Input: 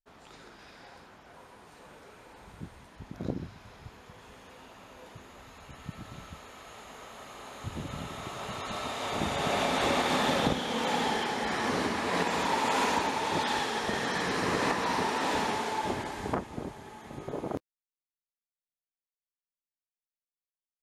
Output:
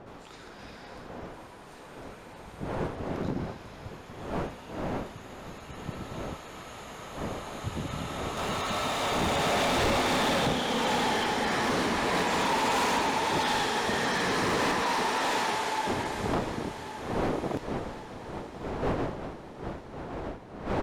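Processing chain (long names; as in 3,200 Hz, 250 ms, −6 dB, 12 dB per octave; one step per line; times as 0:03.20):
wind on the microphone 610 Hz −41 dBFS
0:14.82–0:15.86: high-pass filter 290 Hz → 650 Hz 6 dB per octave
gain into a clipping stage and back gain 26.5 dB
0:08.37–0:09.87: power curve on the samples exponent 0.7
on a send: repeating echo 1,105 ms, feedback 55%, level −14.5 dB
on the sum: level +3.5 dB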